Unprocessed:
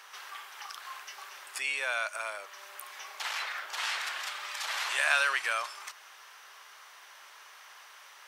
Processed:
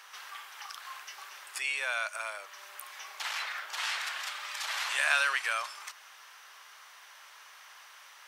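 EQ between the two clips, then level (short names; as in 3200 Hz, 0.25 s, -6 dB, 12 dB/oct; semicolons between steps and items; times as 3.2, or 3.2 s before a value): low shelf 360 Hz -11 dB; 0.0 dB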